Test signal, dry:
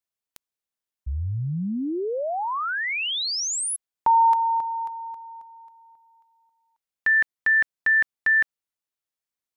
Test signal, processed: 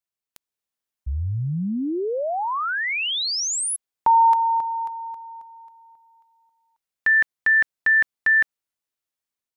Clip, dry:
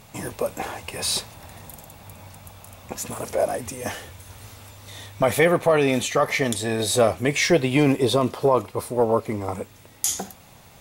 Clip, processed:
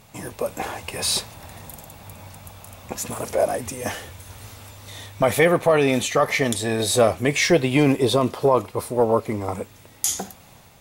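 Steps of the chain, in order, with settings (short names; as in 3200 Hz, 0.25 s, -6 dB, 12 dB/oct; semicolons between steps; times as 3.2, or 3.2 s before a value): AGC gain up to 4.5 dB; gain -2.5 dB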